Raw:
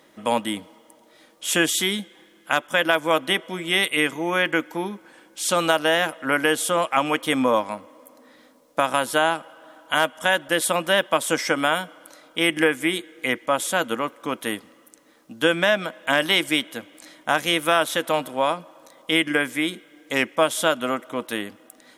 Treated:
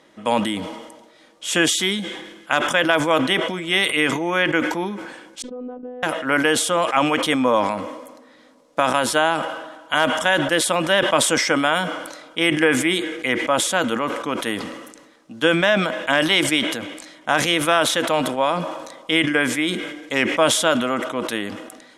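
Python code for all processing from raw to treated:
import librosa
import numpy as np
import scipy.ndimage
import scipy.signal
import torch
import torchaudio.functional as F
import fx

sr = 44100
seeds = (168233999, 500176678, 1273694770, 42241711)

y = fx.chain(x, sr, fx.level_steps(step_db=15),
    fx.robotise(hz=249.0),
    fx.lowpass_res(hz=380.0, q=2.1), at=(5.42, 6.03))
y = scipy.signal.sosfilt(scipy.signal.butter(2, 8000.0, 'lowpass', fs=sr, output='sos'), y)
y = fx.sustainer(y, sr, db_per_s=48.0)
y = y * 10.0 ** (1.5 / 20.0)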